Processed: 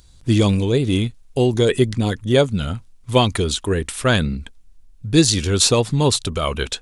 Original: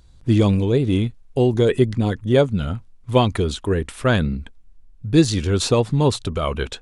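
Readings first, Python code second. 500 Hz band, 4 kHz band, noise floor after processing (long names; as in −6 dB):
+0.5 dB, +7.0 dB, −49 dBFS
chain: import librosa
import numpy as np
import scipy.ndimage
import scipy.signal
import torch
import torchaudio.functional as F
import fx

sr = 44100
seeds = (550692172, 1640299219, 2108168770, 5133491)

y = fx.high_shelf(x, sr, hz=3000.0, db=11.5)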